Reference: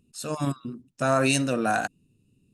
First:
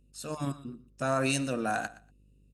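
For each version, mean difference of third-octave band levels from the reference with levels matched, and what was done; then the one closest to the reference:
1.5 dB: hum with harmonics 50 Hz, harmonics 11, −57 dBFS −8 dB per octave
on a send: repeating echo 119 ms, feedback 16%, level −18 dB
on the sum: level −6 dB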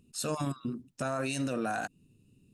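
3.5 dB: downward compressor 2 to 1, threshold −31 dBFS, peak gain reduction 8 dB
brickwall limiter −24.5 dBFS, peak gain reduction 7 dB
level +1.5 dB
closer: first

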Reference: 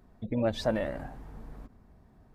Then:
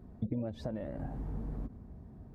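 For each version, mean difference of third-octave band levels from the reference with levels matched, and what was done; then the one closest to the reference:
6.0 dB: high-pass filter 47 Hz
downward compressor 16 to 1, threshold −40 dBFS, peak gain reduction 18 dB
tilt shelving filter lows +8.5 dB, about 690 Hz
level +2 dB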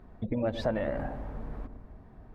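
4.5 dB: low-shelf EQ 150 Hz +8 dB
downward compressor 5 to 1, threshold −31 dBFS, peak gain reduction 9 dB
bass and treble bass −6 dB, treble −14 dB
on a send: delay with a low-pass on its return 112 ms, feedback 61%, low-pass 800 Hz, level −11 dB
on the sum: level +6.5 dB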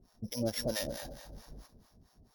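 8.5 dB: samples sorted by size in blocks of 8 samples
two-band tremolo in antiphase 4.5 Hz, depth 100%, crossover 600 Hz
high-shelf EQ 2,400 Hz +7.5 dB
on a send: feedback echo with a high-pass in the loop 212 ms, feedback 37%, high-pass 190 Hz, level −10.5 dB
on the sum: level −1.5 dB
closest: second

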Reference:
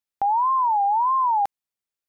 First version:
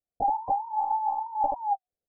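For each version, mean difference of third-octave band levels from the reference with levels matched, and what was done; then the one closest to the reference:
4.5 dB: Chebyshev low-pass with heavy ripple 780 Hz, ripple 3 dB
on a send: loudspeakers that aren't time-aligned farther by 25 metres −4 dB, 96 metres −1 dB
on the sum: one-pitch LPC vocoder at 8 kHz 290 Hz
level +6 dB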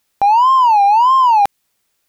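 3.5 dB: dynamic equaliser 830 Hz, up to −5 dB, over −35 dBFS, Q 0.88
in parallel at −4.5 dB: hard clipping −31.5 dBFS, distortion −10 dB
on the sum: boost into a limiter +25.5 dB
level −6.5 dB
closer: second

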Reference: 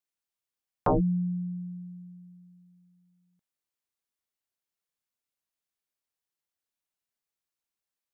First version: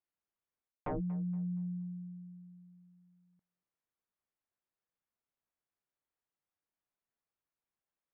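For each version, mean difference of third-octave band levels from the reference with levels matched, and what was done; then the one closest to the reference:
2.5 dB: stylus tracing distortion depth 0.16 ms
low-pass filter 1,700 Hz 12 dB per octave
feedback echo with a high-pass in the loop 235 ms, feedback 22%, high-pass 220 Hz, level −22 dB
reversed playback
downward compressor 16 to 1, threshold −35 dBFS, peak gain reduction 15 dB
reversed playback
level +1 dB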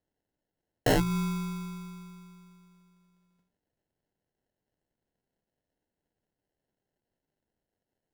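12.0 dB: mains-hum notches 60/120/180 Hz
in parallel at −1.5 dB: brickwall limiter −28 dBFS, peak gain reduction 11 dB
on the sum: decimation without filtering 37×
amplitude modulation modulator 200 Hz, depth 25%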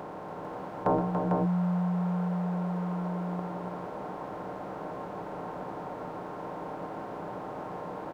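16.5 dB: compressor on every frequency bin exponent 0.2
high-pass filter 280 Hz 6 dB per octave
notch filter 1,200 Hz, Q 17
multi-tap delay 122/286/449 ms −10.5/−6.5/−4 dB
level −2.5 dB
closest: first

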